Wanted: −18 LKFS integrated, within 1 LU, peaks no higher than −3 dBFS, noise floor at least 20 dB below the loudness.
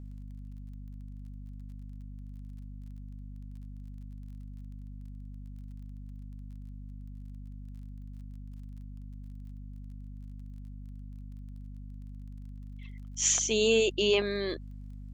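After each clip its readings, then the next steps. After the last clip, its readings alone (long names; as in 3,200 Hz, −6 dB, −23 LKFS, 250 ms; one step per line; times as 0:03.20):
crackle rate 28 per second; mains hum 50 Hz; hum harmonics up to 250 Hz; level of the hum −41 dBFS; integrated loudness −27.0 LKFS; sample peak −14.0 dBFS; target loudness −18.0 LKFS
→ click removal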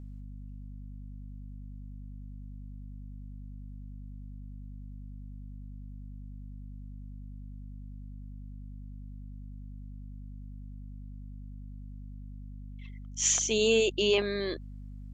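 crackle rate 0 per second; mains hum 50 Hz; hum harmonics up to 250 Hz; level of the hum −41 dBFS
→ hum removal 50 Hz, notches 5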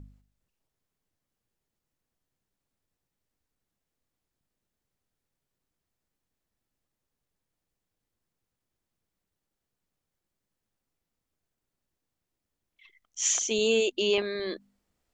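mains hum none found; integrated loudness −26.5 LKFS; sample peak −14.0 dBFS; target loudness −18.0 LKFS
→ level +8.5 dB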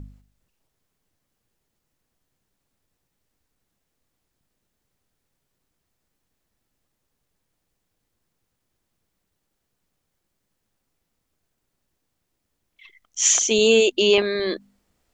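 integrated loudness −18.0 LKFS; sample peak −5.5 dBFS; background noise floor −78 dBFS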